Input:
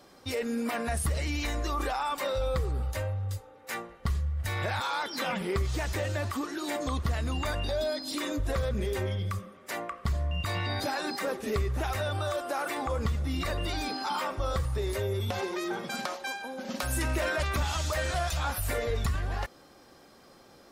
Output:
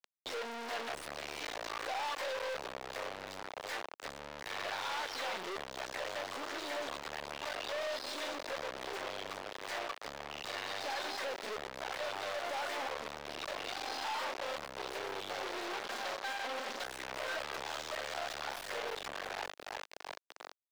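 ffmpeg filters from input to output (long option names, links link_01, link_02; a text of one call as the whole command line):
ffmpeg -i in.wav -filter_complex "[0:a]bandreject=frequency=50:width_type=h:width=6,bandreject=frequency=100:width_type=h:width=6,bandreject=frequency=150:width_type=h:width=6,bandreject=frequency=200:width_type=h:width=6,aecho=1:1:339|678|1017|1356|1695:0.224|0.103|0.0474|0.0218|0.01,asoftclip=type=tanh:threshold=-28dB,equalizer=frequency=315:width_type=o:width=0.33:gain=-4,equalizer=frequency=1250:width_type=o:width=0.33:gain=-8,equalizer=frequency=2500:width_type=o:width=0.33:gain=-8,equalizer=frequency=8000:width_type=o:width=0.33:gain=6,acompressor=threshold=-48dB:ratio=3,aeval=exprs='0.02*(cos(1*acos(clip(val(0)/0.02,-1,1)))-cos(1*PI/2))+0.00562*(cos(4*acos(clip(val(0)/0.02,-1,1)))-cos(4*PI/2))+0.00112*(cos(5*acos(clip(val(0)/0.02,-1,1)))-cos(5*PI/2))+0.000631*(cos(8*acos(clip(val(0)/0.02,-1,1)))-cos(8*PI/2))':channel_layout=same,highpass=frequency=93:poles=1,acrusher=bits=5:dc=4:mix=0:aa=0.000001,acrossover=split=390 5200:gain=0.0708 1 0.126[link_01][link_02][link_03];[link_01][link_02][link_03]amix=inputs=3:normalize=0,volume=13dB" out.wav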